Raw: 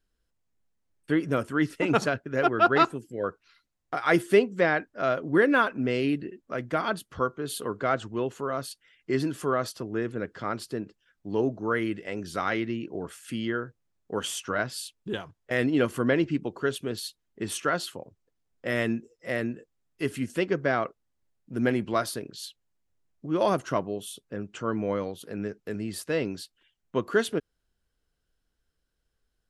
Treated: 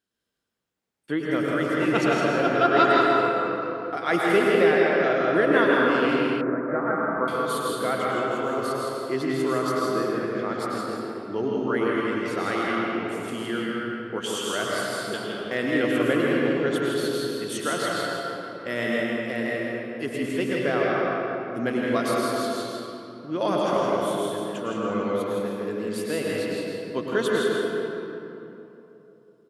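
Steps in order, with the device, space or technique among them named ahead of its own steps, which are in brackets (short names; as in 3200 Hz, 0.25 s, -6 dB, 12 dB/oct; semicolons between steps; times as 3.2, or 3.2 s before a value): stadium PA (HPF 160 Hz 12 dB/oct; bell 3400 Hz +3.5 dB 0.29 oct; loudspeakers at several distances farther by 56 m -5 dB, 69 m -10 dB; reverb RT60 3.2 s, pre-delay 96 ms, DRR -3 dB); 6.41–7.28 steep low-pass 1900 Hz 48 dB/oct; gain -2 dB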